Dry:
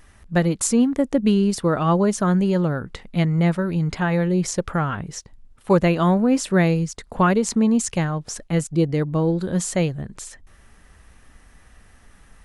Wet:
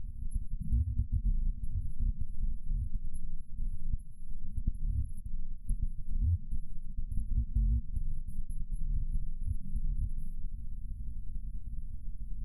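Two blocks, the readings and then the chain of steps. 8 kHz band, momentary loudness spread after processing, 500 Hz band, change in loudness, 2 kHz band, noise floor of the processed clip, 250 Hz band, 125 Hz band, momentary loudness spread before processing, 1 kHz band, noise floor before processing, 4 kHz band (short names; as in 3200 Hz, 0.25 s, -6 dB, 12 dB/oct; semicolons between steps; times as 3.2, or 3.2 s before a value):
-36.0 dB, 12 LU, under -40 dB, -18.5 dB, under -40 dB, -42 dBFS, -30.0 dB, -14.0 dB, 11 LU, under -40 dB, -52 dBFS, under -40 dB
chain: FFT order left unsorted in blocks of 256 samples; treble ducked by the level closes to 2300 Hz, closed at -16.5 dBFS; FFT band-reject 240–9900 Hz; tilt -3 dB/oct; compressor, threshold -26 dBFS, peak gain reduction 11 dB; air absorption 57 m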